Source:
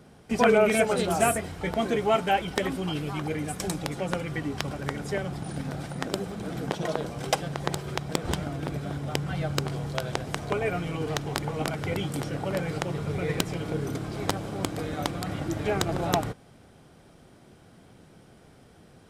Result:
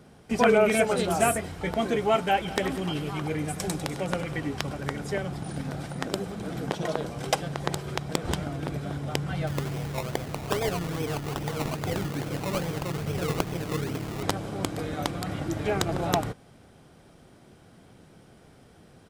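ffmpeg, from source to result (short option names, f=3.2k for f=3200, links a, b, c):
-filter_complex "[0:a]asplit=3[a][b][c];[a]afade=t=out:st=2.45:d=0.02[d];[b]aecho=1:1:99|198|297|396|495|594|693:0.237|0.14|0.0825|0.0487|0.0287|0.017|0.01,afade=t=in:st=2.45:d=0.02,afade=t=out:st=4.55:d=0.02[e];[c]afade=t=in:st=4.55:d=0.02[f];[d][e][f]amix=inputs=3:normalize=0,asettb=1/sr,asplit=3[g][h][i];[g]atrim=end=9.474[j];[h]atrim=start=9.47:end=14.23,asetpts=PTS-STARTPTS,afade=t=in:d=0.004:c=qsin,afade=t=out:st=4.756:d=0.004:c=qsin,acrusher=samples=22:mix=1:aa=0.000001:lfo=1:lforange=13.2:lforate=2.4[k];[i]atrim=start=14.226[l];[j][k]acrossfade=d=0.004:c1=hsin:c2=qsin[m];[m][l]acrossfade=d=0.004:c1=qsin:c2=hsin"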